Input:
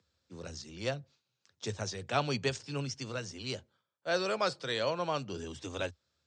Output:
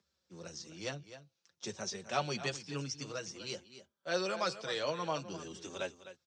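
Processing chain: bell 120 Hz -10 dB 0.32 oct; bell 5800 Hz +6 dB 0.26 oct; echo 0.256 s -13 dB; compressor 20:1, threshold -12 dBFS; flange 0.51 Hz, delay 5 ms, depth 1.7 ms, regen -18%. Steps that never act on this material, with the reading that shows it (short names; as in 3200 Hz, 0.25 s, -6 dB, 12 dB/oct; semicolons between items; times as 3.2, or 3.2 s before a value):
compressor, threshold -12 dBFS: input peak -16.0 dBFS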